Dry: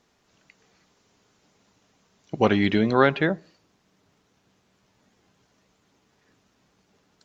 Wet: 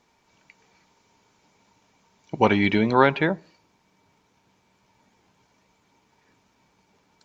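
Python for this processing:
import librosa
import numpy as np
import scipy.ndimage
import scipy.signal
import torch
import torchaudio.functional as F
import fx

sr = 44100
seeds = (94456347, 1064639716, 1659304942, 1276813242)

y = fx.small_body(x, sr, hz=(920.0, 2300.0), ring_ms=45, db=13)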